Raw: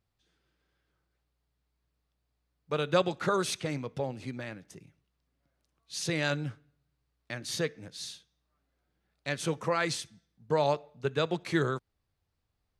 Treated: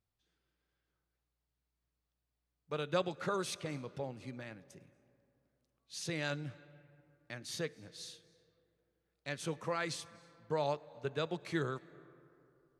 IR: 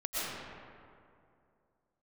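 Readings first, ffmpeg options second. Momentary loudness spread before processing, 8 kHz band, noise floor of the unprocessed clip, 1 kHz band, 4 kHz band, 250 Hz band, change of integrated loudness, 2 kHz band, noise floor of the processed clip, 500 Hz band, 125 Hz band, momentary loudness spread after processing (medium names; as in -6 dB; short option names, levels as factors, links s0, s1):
13 LU, -7.5 dB, -80 dBFS, -7.5 dB, -7.5 dB, -7.5 dB, -7.5 dB, -7.5 dB, under -85 dBFS, -7.5 dB, -7.5 dB, 14 LU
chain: -filter_complex "[0:a]asplit=2[s0][s1];[1:a]atrim=start_sample=2205,asetrate=39690,aresample=44100,adelay=104[s2];[s1][s2]afir=irnorm=-1:irlink=0,volume=0.0398[s3];[s0][s3]amix=inputs=2:normalize=0,volume=0.422"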